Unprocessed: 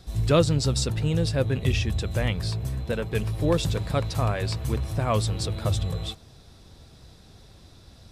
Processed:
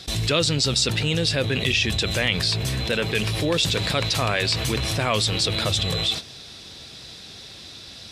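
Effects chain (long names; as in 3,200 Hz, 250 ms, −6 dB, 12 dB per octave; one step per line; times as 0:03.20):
noise gate −39 dBFS, range −29 dB
meter weighting curve D
envelope flattener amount 70%
level −4 dB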